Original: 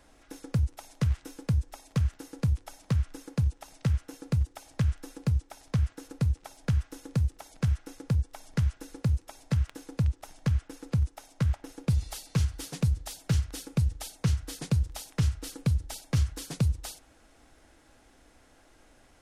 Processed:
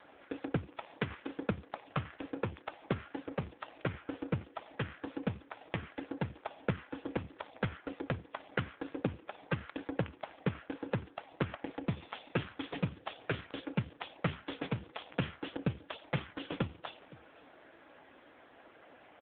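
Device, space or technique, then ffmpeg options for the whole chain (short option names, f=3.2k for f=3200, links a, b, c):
satellite phone: -af "highpass=310,lowpass=3.4k,aecho=1:1:514:0.0794,volume=9.5dB" -ar 8000 -c:a libopencore_amrnb -b:a 5150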